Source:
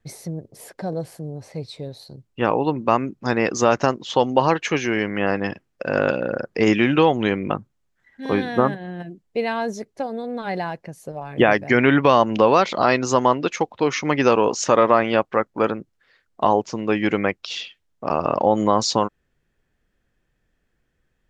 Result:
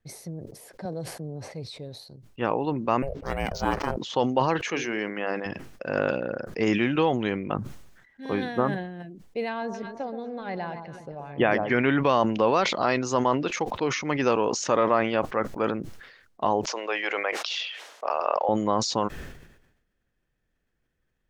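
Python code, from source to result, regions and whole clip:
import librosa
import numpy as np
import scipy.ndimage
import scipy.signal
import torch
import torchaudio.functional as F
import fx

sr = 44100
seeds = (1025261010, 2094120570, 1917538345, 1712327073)

y = fx.chain(x, sr, fx.high_shelf(hz=8800.0, db=-7.5),
    fx.band_squash(depth_pct=70), at=(0.85, 1.51))
y = fx.chain(y, sr, fx.ring_mod(carrier_hz=280.0),
    fx.resample_linear(factor=4), at=(3.02, 3.97))
y = fx.chain(y, sr, fx.highpass(hz=200.0, slope=12),
    fx.hum_notches(base_hz=50, count=9), at=(4.67, 5.46))
y = fx.chain(y, sr, fx.lowpass(hz=4500.0, slope=12),
    fx.echo_alternate(ms=126, hz=1100.0, feedback_pct=55, wet_db=-9), at=(9.49, 11.78))
y = fx.chain(y, sr, fx.highpass(hz=520.0, slope=24),
    fx.air_absorb(metres=53.0),
    fx.env_flatten(amount_pct=50), at=(16.67, 18.49))
y = fx.notch(y, sr, hz=7400.0, q=23.0)
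y = fx.sustainer(y, sr, db_per_s=60.0)
y = F.gain(torch.from_numpy(y), -7.0).numpy()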